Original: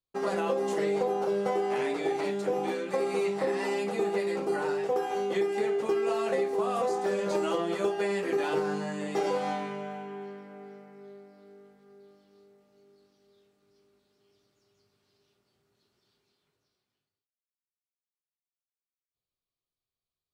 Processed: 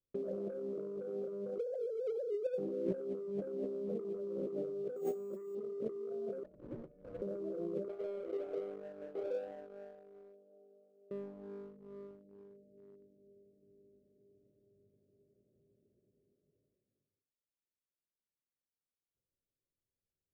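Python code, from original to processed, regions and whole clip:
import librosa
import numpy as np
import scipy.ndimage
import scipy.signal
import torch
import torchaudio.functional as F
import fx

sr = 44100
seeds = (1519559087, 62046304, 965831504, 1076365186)

y = fx.chain(x, sr, fx.sine_speech(),
    fx.over_compress(threshold_db=-32.0, ratio=-0.5), at=(1.58, 2.58))
y = fx.chain(y, sr, fx.comb(ms=5.0, depth=0.61),
    fx.resample_bad(factor=6, down='filtered', up='zero_stuff'), at=(4.96, 5.55))
y = fx.chain(y, sr, fx.highpass(hz=1200.0, slope=24),
    fx.freq_invert(carrier_hz=3000), at=(6.43, 7.22))
y = fx.chain(y, sr, fx.cvsd(bps=16000),
    fx.highpass(hz=1100.0, slope=12), at=(7.88, 11.11))
y = scipy.signal.sosfilt(scipy.signal.ellip(4, 1.0, 40, 580.0, 'lowpass', fs=sr, output='sos'), y)
y = fx.leveller(y, sr, passes=1)
y = fx.over_compress(y, sr, threshold_db=-36.0, ratio=-1.0)
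y = F.gain(torch.from_numpy(y), -3.5).numpy()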